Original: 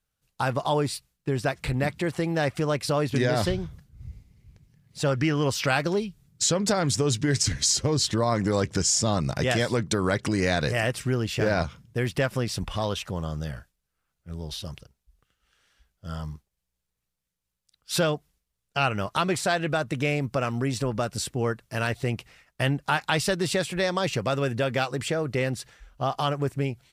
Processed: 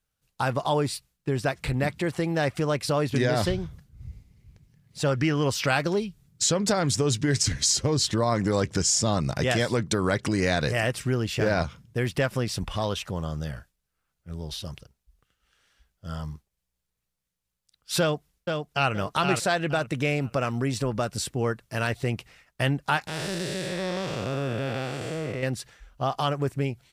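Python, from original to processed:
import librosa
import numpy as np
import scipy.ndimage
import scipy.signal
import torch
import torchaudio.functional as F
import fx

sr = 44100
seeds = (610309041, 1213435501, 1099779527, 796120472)

y = fx.echo_throw(x, sr, start_s=18.0, length_s=0.92, ms=470, feedback_pct=25, wet_db=-4.5)
y = fx.spec_blur(y, sr, span_ms=290.0, at=(23.07, 25.43))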